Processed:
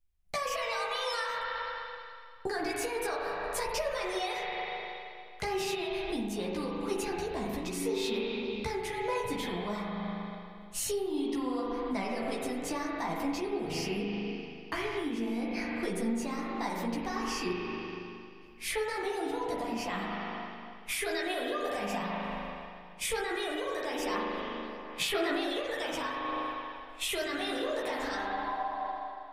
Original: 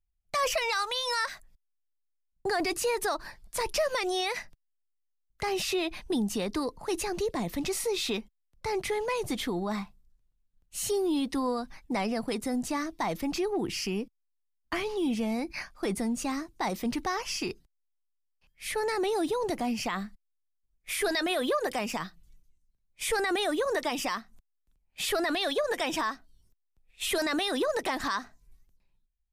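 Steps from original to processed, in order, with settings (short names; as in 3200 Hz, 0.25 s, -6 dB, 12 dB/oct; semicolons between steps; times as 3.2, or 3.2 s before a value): spectral repair 28–28.73, 570–1200 Hz before; spring tank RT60 2.2 s, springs 39 ms, chirp 70 ms, DRR -2 dB; compressor 6:1, threshold -33 dBFS, peak gain reduction 12 dB; chorus voices 4, 0.45 Hz, delay 14 ms, depth 4 ms; gain +5 dB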